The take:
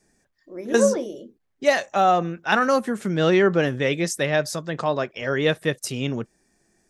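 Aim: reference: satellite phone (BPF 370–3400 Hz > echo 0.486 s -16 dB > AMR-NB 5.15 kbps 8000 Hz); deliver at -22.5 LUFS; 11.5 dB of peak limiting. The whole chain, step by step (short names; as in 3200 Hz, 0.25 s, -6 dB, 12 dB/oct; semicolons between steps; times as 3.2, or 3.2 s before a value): limiter -16 dBFS; BPF 370–3400 Hz; echo 0.486 s -16 dB; gain +7.5 dB; AMR-NB 5.15 kbps 8000 Hz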